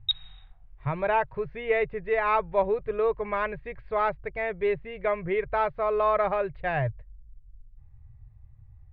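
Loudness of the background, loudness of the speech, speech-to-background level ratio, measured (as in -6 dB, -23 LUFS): -31.0 LUFS, -27.5 LUFS, 3.5 dB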